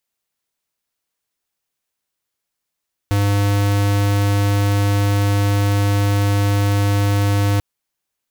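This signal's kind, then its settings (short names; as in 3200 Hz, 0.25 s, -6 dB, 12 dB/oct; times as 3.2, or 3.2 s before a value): tone square 101 Hz -16 dBFS 4.49 s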